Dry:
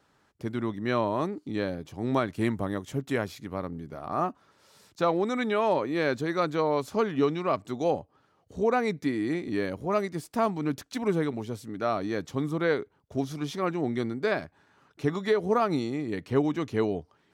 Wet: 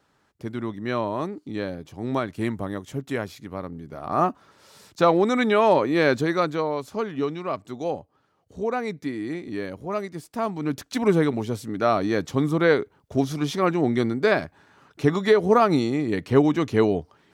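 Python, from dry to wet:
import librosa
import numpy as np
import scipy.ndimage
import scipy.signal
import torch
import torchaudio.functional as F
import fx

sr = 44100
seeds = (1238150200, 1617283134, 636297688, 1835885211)

y = fx.gain(x, sr, db=fx.line((3.82, 0.5), (4.23, 7.0), (6.22, 7.0), (6.77, -1.5), (10.38, -1.5), (11.01, 7.0)))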